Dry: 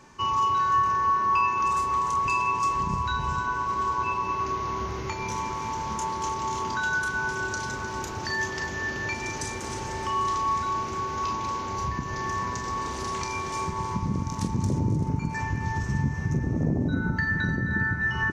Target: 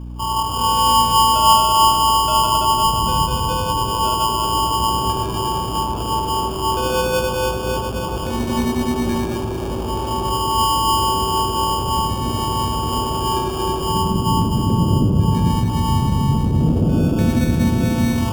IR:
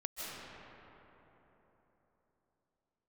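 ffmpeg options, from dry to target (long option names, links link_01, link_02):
-filter_complex "[0:a]lowpass=2900,bandreject=frequency=62.59:width_type=h:width=4,bandreject=frequency=125.18:width_type=h:width=4,bandreject=frequency=187.77:width_type=h:width=4,bandreject=frequency=250.36:width_type=h:width=4,bandreject=frequency=312.95:width_type=h:width=4,bandreject=frequency=375.54:width_type=h:width=4,bandreject=frequency=438.13:width_type=h:width=4,bandreject=frequency=500.72:width_type=h:width=4,bandreject=frequency=563.31:width_type=h:width=4,bandreject=frequency=625.9:width_type=h:width=4,bandreject=frequency=688.49:width_type=h:width=4,bandreject=frequency=751.08:width_type=h:width=4,bandreject=frequency=813.67:width_type=h:width=4,bandreject=frequency=876.26:width_type=h:width=4,bandreject=frequency=938.85:width_type=h:width=4,bandreject=frequency=1001.44:width_type=h:width=4,bandreject=frequency=1064.03:width_type=h:width=4[link_01];[1:a]atrim=start_sample=2205,asetrate=66150,aresample=44100[link_02];[link_01][link_02]afir=irnorm=-1:irlink=0,acrossover=split=860[link_03][link_04];[link_04]acrusher=samples=22:mix=1:aa=0.000001[link_05];[link_03][link_05]amix=inputs=2:normalize=0,aeval=exprs='val(0)+0.00891*(sin(2*PI*60*n/s)+sin(2*PI*2*60*n/s)/2+sin(2*PI*3*60*n/s)/3+sin(2*PI*4*60*n/s)/4+sin(2*PI*5*60*n/s)/5)':channel_layout=same,acontrast=33,volume=6.5dB"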